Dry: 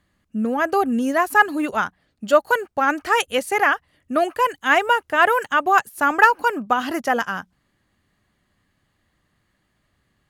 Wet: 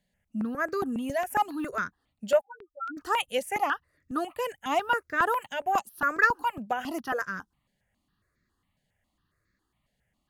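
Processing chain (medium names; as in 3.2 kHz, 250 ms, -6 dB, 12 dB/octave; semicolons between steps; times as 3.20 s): 2.41–2.97 s: loudest bins only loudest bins 1; stepped phaser 7.3 Hz 320–3000 Hz; trim -6 dB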